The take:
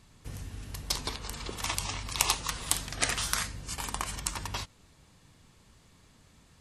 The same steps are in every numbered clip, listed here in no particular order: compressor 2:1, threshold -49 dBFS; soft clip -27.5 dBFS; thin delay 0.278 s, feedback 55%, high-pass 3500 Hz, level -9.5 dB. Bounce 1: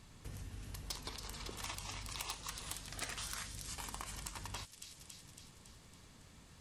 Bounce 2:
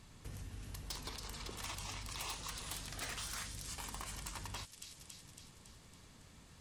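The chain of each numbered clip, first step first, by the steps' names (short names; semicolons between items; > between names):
thin delay > compressor > soft clip; thin delay > soft clip > compressor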